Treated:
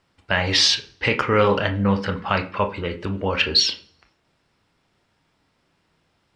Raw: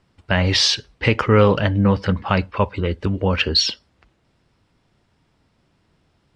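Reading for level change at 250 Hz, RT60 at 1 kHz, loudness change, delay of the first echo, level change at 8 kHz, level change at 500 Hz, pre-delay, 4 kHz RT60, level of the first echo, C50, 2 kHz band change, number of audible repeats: −4.5 dB, 0.40 s, −2.0 dB, no echo audible, 0.0 dB, −2.5 dB, 25 ms, 0.50 s, no echo audible, 14.0 dB, +0.5 dB, no echo audible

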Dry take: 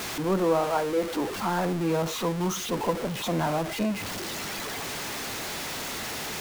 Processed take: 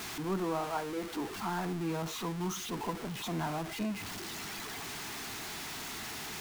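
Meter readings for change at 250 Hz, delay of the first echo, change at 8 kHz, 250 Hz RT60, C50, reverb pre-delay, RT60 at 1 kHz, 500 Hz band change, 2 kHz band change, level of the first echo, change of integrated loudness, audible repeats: −7.5 dB, no echo audible, −7.0 dB, no reverb audible, no reverb audible, no reverb audible, no reverb audible, −11.5 dB, −7.0 dB, no echo audible, −8.5 dB, no echo audible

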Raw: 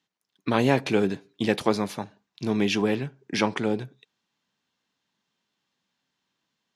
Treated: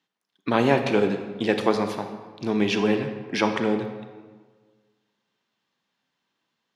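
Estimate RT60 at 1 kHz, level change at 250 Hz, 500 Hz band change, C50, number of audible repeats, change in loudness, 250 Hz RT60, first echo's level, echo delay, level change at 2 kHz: 1.5 s, +1.5 dB, +3.0 dB, 8.0 dB, no echo audible, +1.5 dB, 1.6 s, no echo audible, no echo audible, +2.0 dB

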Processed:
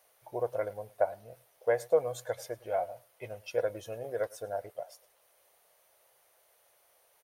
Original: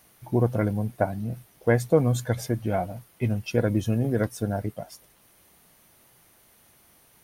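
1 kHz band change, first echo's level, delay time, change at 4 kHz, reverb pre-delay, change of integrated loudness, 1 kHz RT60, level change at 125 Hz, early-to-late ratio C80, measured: −4.5 dB, −22.5 dB, 106 ms, −9.0 dB, no reverb audible, −8.0 dB, no reverb audible, −25.0 dB, no reverb audible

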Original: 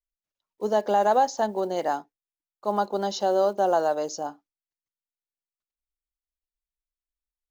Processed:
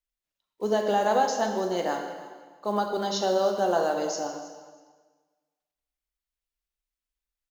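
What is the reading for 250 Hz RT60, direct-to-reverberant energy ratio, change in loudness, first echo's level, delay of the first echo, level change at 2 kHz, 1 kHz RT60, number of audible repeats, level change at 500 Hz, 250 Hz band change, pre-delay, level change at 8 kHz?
1.4 s, 3.0 dB, −1.5 dB, −17.5 dB, 321 ms, +2.5 dB, 1.4 s, 2, −1.5 dB, +1.0 dB, 5 ms, can't be measured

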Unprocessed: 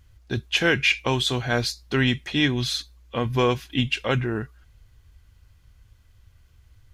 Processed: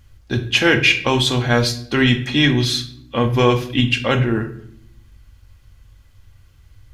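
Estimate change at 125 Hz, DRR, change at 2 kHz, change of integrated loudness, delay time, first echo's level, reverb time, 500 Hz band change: +7.5 dB, 5.0 dB, +6.0 dB, +6.5 dB, no echo audible, no echo audible, 0.65 s, +6.5 dB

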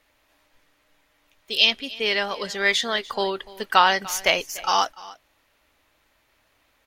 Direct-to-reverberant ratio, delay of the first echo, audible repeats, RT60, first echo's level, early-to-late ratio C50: no reverb audible, 294 ms, 1, no reverb audible, −20.0 dB, no reverb audible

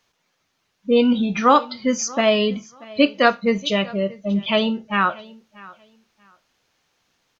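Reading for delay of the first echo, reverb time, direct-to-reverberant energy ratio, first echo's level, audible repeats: 634 ms, no reverb audible, no reverb audible, −22.0 dB, 1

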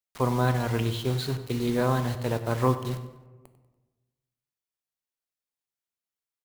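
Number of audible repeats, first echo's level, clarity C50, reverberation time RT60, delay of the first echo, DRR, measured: 3, −15.0 dB, 10.5 dB, 1.2 s, 96 ms, 8.5 dB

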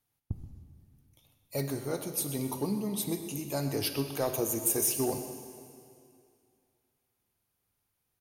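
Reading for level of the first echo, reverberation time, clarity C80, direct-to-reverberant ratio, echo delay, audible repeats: −13.5 dB, 2.4 s, 8.0 dB, 6.0 dB, 127 ms, 1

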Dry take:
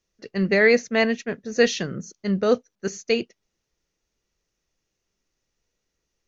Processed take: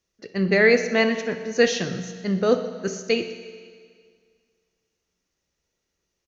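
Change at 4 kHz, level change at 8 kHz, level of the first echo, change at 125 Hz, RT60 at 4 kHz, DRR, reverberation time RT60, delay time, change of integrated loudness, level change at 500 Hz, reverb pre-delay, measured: +1.0 dB, can't be measured, −16.0 dB, +1.0 dB, 1.8 s, 8.0 dB, 2.0 s, 62 ms, 0.0 dB, +0.5 dB, 11 ms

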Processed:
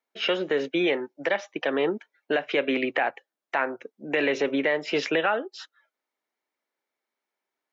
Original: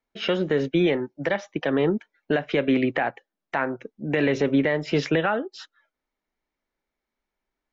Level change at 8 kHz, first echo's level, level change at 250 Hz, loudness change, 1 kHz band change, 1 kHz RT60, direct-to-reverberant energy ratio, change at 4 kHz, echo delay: can't be measured, no echo audible, −6.0 dB, −2.0 dB, 0.0 dB, no reverb audible, no reverb audible, +2.0 dB, no echo audible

